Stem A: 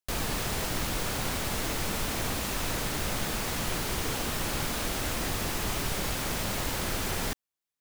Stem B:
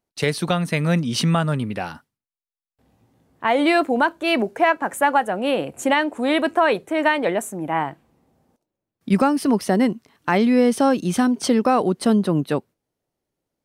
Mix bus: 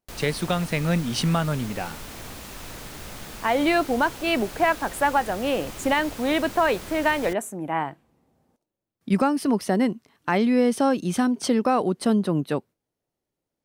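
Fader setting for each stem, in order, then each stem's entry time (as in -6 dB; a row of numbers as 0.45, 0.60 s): -7.5, -3.5 dB; 0.00, 0.00 s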